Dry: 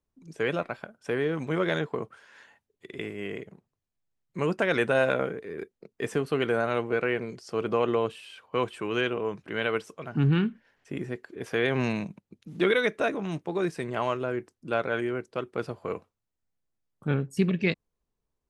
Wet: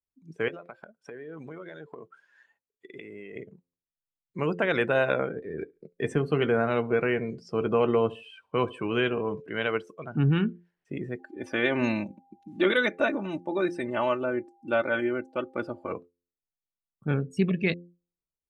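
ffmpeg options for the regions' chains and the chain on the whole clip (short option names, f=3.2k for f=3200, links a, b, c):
-filter_complex "[0:a]asettb=1/sr,asplit=3[a][b][c];[a]atrim=end=0.484[d];[b]atrim=start=0.48:end=3.36,asetpts=PTS-STARTPTS,afade=t=in:d=0.004:c=qsin,afade=t=out:st=2.876:d=0.004:c=qsin,lowshelf=f=180:g=-8.5,acompressor=threshold=-36dB:ratio=16:attack=3.2:release=140:knee=1:detection=peak[e];[c]atrim=start=3.356[f];[d][e]acrossfade=d=0.004:c1=hsin:c2=qsin[g];[g][f]acrossfade=d=0.004:c1=qsin:c2=hsin,asettb=1/sr,asplit=3[h][i][j];[h]atrim=end=5.364[k];[i]atrim=start=5.36:end=9.41,asetpts=PTS-STARTPTS,afade=t=in:d=0.004:c=qsin,afade=t=out:st=4.046:d=0.004:c=qsin,lowshelf=f=190:g=8,asplit=2[l][m];[m]adelay=13,volume=-12dB[n];[l][n]amix=inputs=2:normalize=0,atrim=end_sample=178605,aecho=1:1:70|140|210:0.0944|0.0378|0.0151,atrim=end_sample=178605[o];[j]atrim=start=9.406[p];[k][o]acrossfade=d=0.004:c1=hsin:c2=qsin[q];[q][p]acrossfade=d=0.004:c1=qsin:c2=hsin,asettb=1/sr,asplit=3[r][s][t];[r]atrim=end=11.194[u];[s]atrim=start=11.19:end=15.92,asetpts=PTS-STARTPTS,afade=t=in:d=0.004:c=qsin,afade=t=out:st=4.726:d=0.004:c=qsin,aecho=1:1:3.4:0.7,atrim=end_sample=208593,aeval=exprs='val(0)+0.00141*sin(2*PI*800*n/s)':c=same[v];[t]atrim=start=15.916[w];[u][v]acrossfade=d=0.004:c1=hsin:c2=qsin[x];[x][w]acrossfade=d=0.004:c1=qsin:c2=hsin,bandreject=f=87.14:t=h:w=4,bandreject=f=174.28:t=h:w=4,bandreject=f=261.42:t=h:w=4,bandreject=f=348.56:t=h:w=4,bandreject=f=435.7:t=h:w=4,bandreject=f=522.84:t=h:w=4,afftdn=nr=16:nf=-43"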